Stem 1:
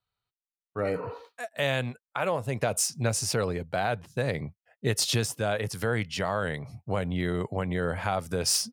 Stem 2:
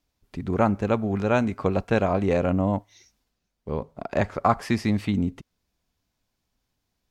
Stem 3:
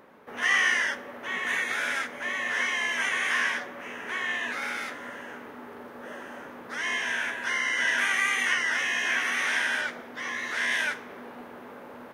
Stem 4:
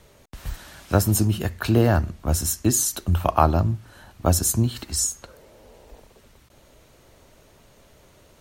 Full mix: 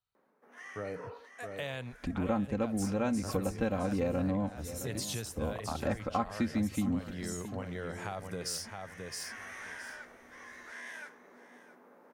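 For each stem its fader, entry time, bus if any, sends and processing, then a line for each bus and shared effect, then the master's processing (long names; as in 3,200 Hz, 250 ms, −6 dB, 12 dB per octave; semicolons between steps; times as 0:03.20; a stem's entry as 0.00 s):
−6.5 dB, 0.00 s, no send, echo send −8 dB, no processing
−2.0 dB, 1.70 s, no send, echo send −20.5 dB, low-shelf EQ 340 Hz +6 dB; comb filter 3.8 ms
−14.0 dB, 0.15 s, no send, echo send −15.5 dB, Chebyshev high-pass filter 160 Hz, order 4; parametric band 3,100 Hz −9.5 dB 0.99 octaves; automatic ducking −12 dB, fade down 1.15 s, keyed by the first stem
−15.5 dB, 2.30 s, no send, echo send −17.5 dB, no processing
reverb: not used
echo: repeating echo 665 ms, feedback 17%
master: downward compressor 2 to 1, threshold −38 dBFS, peak gain reduction 13.5 dB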